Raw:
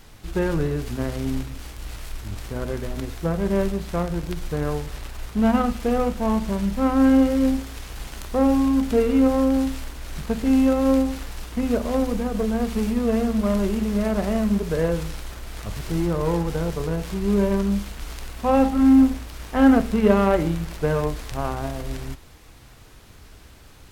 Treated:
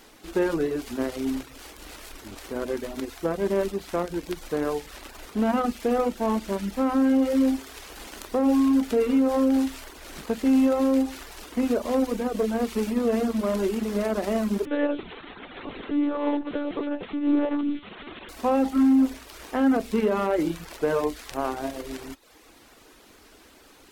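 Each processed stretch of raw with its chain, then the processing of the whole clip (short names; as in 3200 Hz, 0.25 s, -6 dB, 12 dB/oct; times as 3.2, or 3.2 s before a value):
14.65–18.29 HPF 48 Hz + monotone LPC vocoder at 8 kHz 290 Hz
whole clip: reverb removal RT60 0.53 s; resonant low shelf 190 Hz -13.5 dB, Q 1.5; limiter -14 dBFS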